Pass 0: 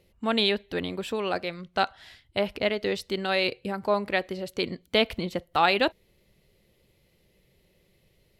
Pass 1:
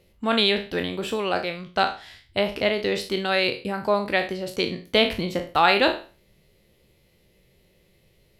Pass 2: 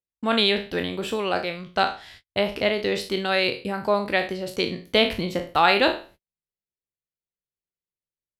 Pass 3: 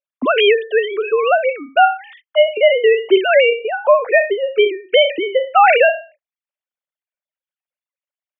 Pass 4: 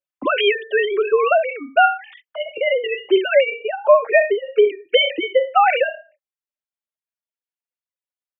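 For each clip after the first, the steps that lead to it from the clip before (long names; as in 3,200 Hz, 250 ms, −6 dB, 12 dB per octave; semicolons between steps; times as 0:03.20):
peak hold with a decay on every bin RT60 0.36 s; level +2.5 dB
noise gate −47 dBFS, range −43 dB
three sine waves on the formant tracks; boost into a limiter +11.5 dB; level −1 dB
speech leveller within 4 dB 0.5 s; barber-pole flanger 3.5 ms +0.36 Hz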